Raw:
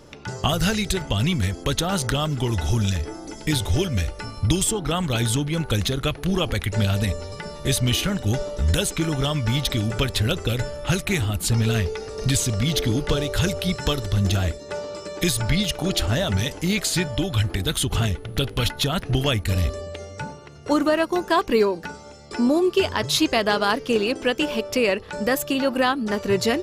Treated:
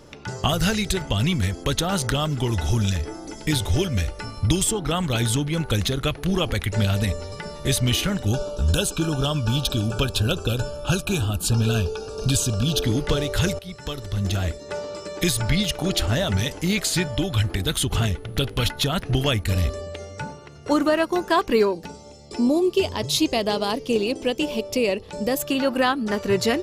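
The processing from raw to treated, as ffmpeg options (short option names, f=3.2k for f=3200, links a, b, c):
-filter_complex "[0:a]asettb=1/sr,asplit=3[a][b][c];[a]atrim=end=8.274[d];[b]atrim=start=8.27:end=12.84,asetpts=PTS-STARTPTS,afade=t=in:d=0.004:c=qsin,afade=t=out:st=4.566:d=0.004:c=qsin,asuperstop=centerf=2000:order=12:qfactor=3[e];[c]atrim=start=12.836[f];[d][e]acrossfade=d=0.004:c1=hsin:c2=qsin[g];[g][f]acrossfade=d=0.004:c1=qsin:c2=hsin,asettb=1/sr,asplit=3[h][i][j];[h]atrim=end=21.734[k];[i]atrim=start=21.73:end=25.4,asetpts=PTS-STARTPTS,afade=t=in:d=0.004:c=qsin,afade=t=out:st=3.666:d=0.004:c=qsin,equalizer=f=1.5k:w=1.5:g=-13[l];[j]atrim=start=25.396[m];[k][l]acrossfade=d=0.004:c1=hsin:c2=qsin[n];[n][m]acrossfade=d=0.004:c1=qsin:c2=hsin,asplit=2[o][p];[o]atrim=end=13.59,asetpts=PTS-STARTPTS,afade=t=out:st=13.586:d=0.004:c=hsin:silence=0.158489[q];[p]atrim=start=13.59,asetpts=PTS-STARTPTS,afade=t=in:d=1.09:silence=0.158489[r];[q][r]concat=n=2:v=0:a=1"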